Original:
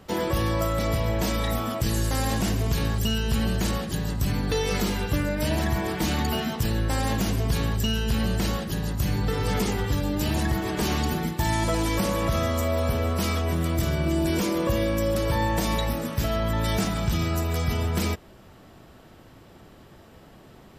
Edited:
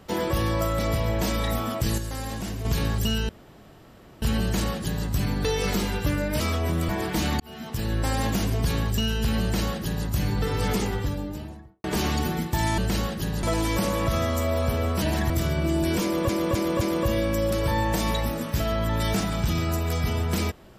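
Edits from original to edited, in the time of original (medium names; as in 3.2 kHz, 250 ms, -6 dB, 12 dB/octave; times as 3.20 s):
1.98–2.65 s: gain -7 dB
3.29 s: insert room tone 0.93 s
5.47–5.75 s: swap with 13.23–13.72 s
6.26–6.85 s: fade in
8.28–8.93 s: copy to 11.64 s
9.58–10.70 s: studio fade out
14.45–14.71 s: loop, 4 plays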